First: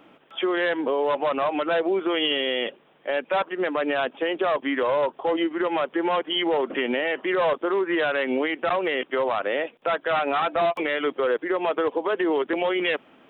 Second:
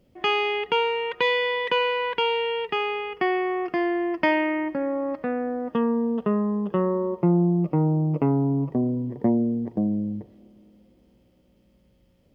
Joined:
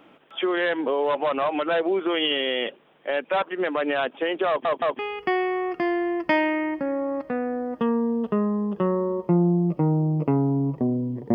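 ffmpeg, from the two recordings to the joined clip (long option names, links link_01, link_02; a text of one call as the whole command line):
ffmpeg -i cue0.wav -i cue1.wav -filter_complex "[0:a]apad=whole_dur=11.34,atrim=end=11.34,asplit=3[link_01][link_02][link_03];[link_01]atrim=end=4.652[link_04];[link_02]atrim=start=4.478:end=4.652[link_05];[link_03]atrim=start=4.478:end=4.652[link_06];[1:a]atrim=start=2.928:end=9.28[link_07];[link_04][link_05]acrossfade=duration=0.004:curve1=hsin:curve2=hsin[link_08];[link_08][link_06]acrossfade=duration=0.004:curve1=hsin:curve2=hsin[link_09];[link_09][link_07]acrossfade=duration=0.004:curve1=hsin:curve2=hsin" out.wav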